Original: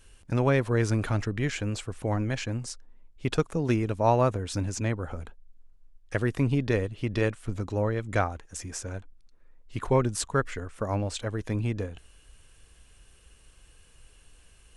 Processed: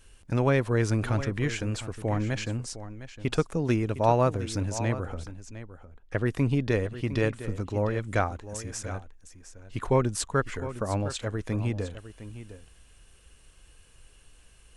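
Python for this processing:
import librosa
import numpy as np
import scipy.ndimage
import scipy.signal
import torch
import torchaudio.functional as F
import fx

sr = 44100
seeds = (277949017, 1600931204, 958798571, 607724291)

y = fx.lowpass(x, sr, hz=2200.0, slope=6, at=(5.14, 6.26))
y = y + 10.0 ** (-13.5 / 20.0) * np.pad(y, (int(708 * sr / 1000.0), 0))[:len(y)]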